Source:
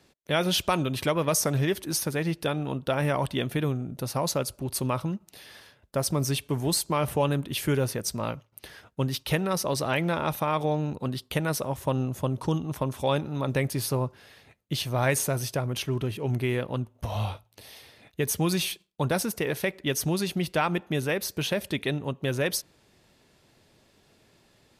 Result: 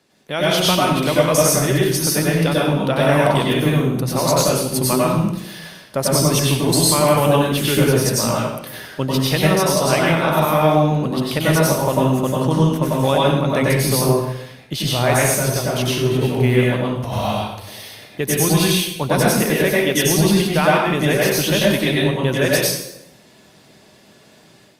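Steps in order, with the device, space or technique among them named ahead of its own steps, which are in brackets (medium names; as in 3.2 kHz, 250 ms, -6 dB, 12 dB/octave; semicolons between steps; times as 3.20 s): far-field microphone of a smart speaker (reverberation RT60 0.80 s, pre-delay 89 ms, DRR -5 dB; high-pass 140 Hz; level rider gain up to 7 dB; Opus 48 kbps 48 kHz)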